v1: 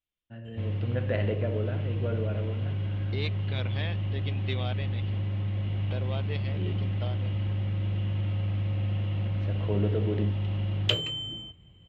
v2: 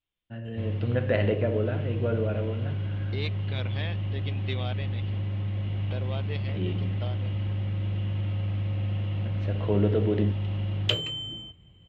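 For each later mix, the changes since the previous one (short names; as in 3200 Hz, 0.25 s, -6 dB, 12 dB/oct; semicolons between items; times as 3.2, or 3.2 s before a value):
first voice +5.0 dB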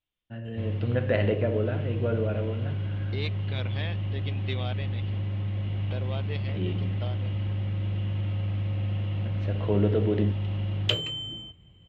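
none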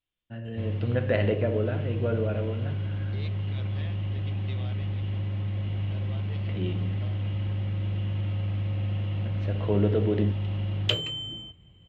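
second voice -10.0 dB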